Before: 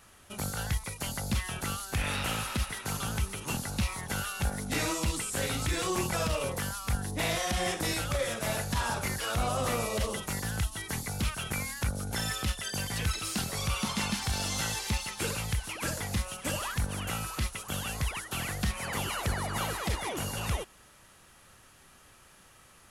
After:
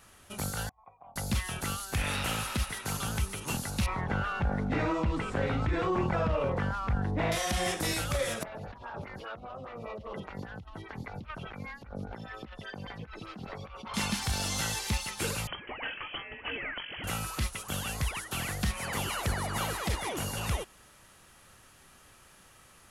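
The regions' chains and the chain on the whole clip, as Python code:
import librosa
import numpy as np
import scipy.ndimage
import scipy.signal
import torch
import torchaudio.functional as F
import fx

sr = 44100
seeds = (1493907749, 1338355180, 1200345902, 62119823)

y = fx.chain(x, sr, fx.low_shelf(hz=68.0, db=-3.0),
    fx.over_compress(threshold_db=-35.0, ratio=-0.5),
    fx.formant_cascade(vowel='a'), at=(0.69, 1.16))
y = fx.chain(y, sr, fx.lowpass(hz=1600.0, slope=12),
    fx.env_flatten(amount_pct=50), at=(3.86, 7.32))
y = fx.chain(y, sr, fx.over_compress(threshold_db=-36.0, ratio=-1.0),
    fx.air_absorb(metres=310.0),
    fx.stagger_phaser(hz=5.0), at=(8.43, 13.94))
y = fx.chain(y, sr, fx.highpass(hz=120.0, slope=12),
    fx.low_shelf(hz=280.0, db=-10.0),
    fx.freq_invert(carrier_hz=3200), at=(15.47, 17.04))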